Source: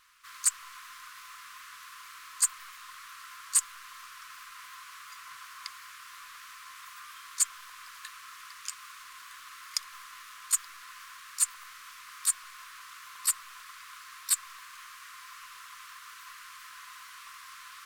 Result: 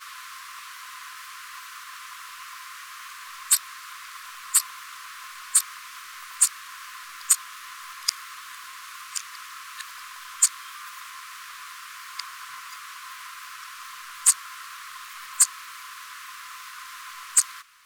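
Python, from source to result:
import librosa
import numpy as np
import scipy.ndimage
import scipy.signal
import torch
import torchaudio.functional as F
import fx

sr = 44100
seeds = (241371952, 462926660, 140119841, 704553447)

y = x[::-1].copy()
y = fx.low_shelf(y, sr, hz=84.0, db=-7.5)
y = y * librosa.db_to_amplitude(7.0)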